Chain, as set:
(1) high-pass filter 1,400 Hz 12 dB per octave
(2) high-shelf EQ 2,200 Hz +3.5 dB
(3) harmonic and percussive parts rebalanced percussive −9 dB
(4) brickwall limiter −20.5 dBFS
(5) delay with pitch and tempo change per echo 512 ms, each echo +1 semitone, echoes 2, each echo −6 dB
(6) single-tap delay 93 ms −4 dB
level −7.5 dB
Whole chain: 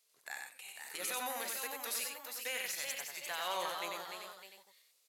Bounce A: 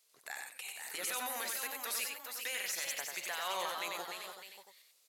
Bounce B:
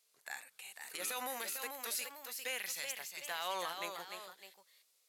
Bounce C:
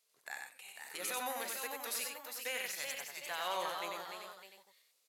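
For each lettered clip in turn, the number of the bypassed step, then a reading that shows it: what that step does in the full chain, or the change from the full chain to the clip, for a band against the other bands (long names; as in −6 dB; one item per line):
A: 3, 500 Hz band −2.0 dB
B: 6, change in integrated loudness −1.5 LU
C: 2, 8 kHz band −2.0 dB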